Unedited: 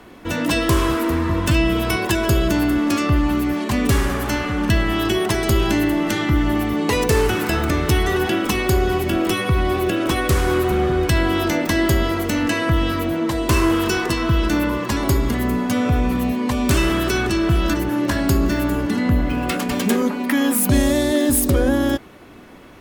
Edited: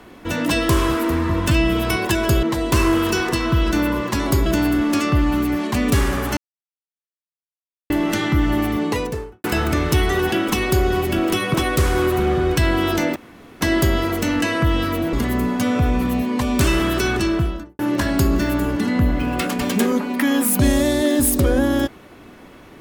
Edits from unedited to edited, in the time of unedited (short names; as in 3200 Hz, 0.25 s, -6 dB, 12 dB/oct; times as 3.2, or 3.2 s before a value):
4.34–5.87 mute
6.69–7.41 studio fade out
9.51–10.06 cut
11.68 insert room tone 0.45 s
13.2–15.23 move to 2.43
17.33–17.89 studio fade out